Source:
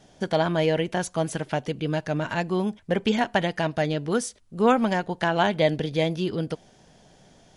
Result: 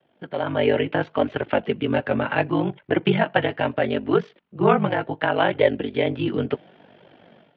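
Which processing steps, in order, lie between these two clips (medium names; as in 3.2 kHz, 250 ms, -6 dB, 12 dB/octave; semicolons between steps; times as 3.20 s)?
ring modulator 24 Hz; mistuned SSB -50 Hz 210–3200 Hz; flange 0.71 Hz, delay 1.8 ms, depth 7.6 ms, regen -39%; level rider gain up to 15.5 dB; trim -2 dB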